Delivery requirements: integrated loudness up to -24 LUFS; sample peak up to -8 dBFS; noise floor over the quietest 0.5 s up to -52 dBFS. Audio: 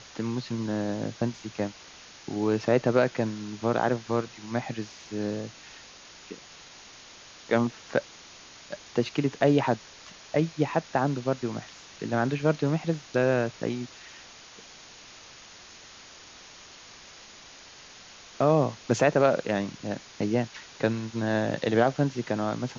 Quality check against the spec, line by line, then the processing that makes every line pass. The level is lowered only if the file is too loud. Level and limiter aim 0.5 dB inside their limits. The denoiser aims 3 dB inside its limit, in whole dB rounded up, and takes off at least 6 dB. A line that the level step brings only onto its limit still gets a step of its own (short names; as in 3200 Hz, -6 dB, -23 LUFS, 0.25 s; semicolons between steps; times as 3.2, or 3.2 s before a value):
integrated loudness -28.0 LUFS: OK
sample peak -8.5 dBFS: OK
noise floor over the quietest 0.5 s -49 dBFS: fail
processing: denoiser 6 dB, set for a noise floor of -49 dBFS